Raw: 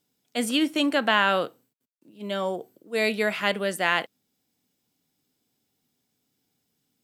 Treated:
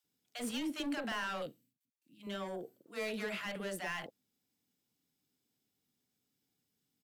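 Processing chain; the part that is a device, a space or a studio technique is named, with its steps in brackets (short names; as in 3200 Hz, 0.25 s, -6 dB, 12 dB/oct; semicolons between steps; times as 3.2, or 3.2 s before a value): 1.42–2.23 band shelf 740 Hz -14.5 dB 2.3 oct; saturation between pre-emphasis and de-emphasis (high shelf 4000 Hz +9 dB; soft clip -24.5 dBFS, distortion -5 dB; high shelf 4000 Hz -9 dB); bands offset in time highs, lows 40 ms, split 690 Hz; gain -7.5 dB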